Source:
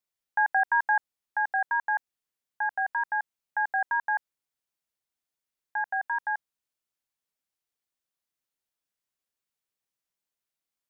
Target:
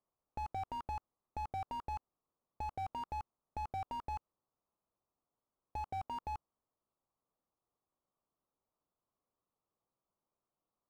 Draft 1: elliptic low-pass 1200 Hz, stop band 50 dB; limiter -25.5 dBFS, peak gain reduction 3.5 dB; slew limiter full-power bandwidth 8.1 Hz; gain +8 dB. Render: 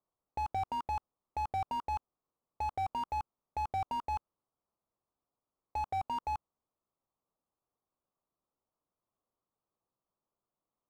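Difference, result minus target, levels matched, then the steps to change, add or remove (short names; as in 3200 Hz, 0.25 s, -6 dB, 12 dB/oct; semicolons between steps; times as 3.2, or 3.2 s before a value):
slew limiter: distortion -6 dB
change: slew limiter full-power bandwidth 4 Hz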